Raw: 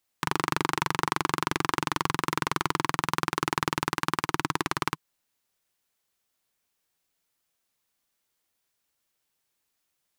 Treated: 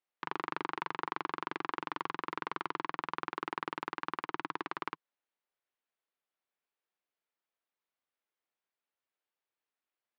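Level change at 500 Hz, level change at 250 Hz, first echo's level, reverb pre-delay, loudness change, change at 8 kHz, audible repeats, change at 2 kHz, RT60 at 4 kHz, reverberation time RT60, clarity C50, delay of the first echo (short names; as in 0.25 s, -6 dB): -9.5 dB, -12.0 dB, none, none, -10.0 dB, under -30 dB, none, -10.0 dB, none, none, none, none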